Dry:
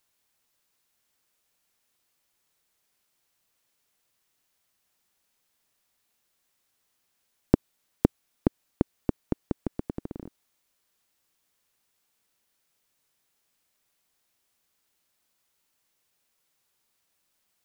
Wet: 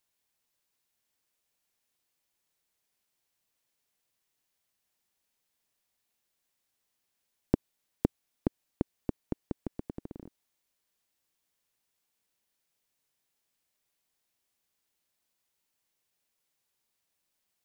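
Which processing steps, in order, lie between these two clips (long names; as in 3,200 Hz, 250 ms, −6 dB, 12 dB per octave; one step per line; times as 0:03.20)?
parametric band 1,300 Hz −3 dB 0.44 octaves
level −6 dB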